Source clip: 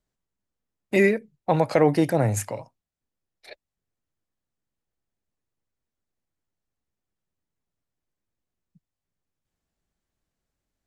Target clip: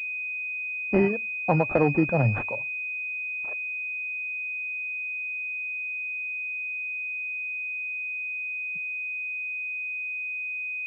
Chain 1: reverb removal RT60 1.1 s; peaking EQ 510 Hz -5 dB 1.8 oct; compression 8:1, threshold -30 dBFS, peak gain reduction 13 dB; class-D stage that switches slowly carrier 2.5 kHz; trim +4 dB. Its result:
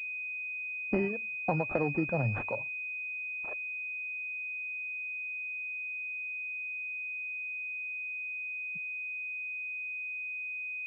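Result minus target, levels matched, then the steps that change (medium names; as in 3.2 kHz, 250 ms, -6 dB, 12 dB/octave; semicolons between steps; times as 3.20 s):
compression: peak gain reduction +9.5 dB
change: compression 8:1, threshold -19 dBFS, peak gain reduction 3.5 dB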